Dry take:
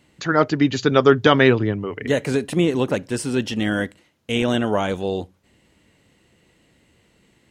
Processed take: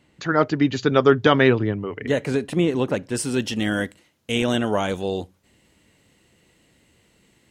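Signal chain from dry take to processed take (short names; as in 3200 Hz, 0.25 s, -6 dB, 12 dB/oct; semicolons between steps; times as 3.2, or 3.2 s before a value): high shelf 5000 Hz -5.5 dB, from 3.15 s +6 dB; gain -1.5 dB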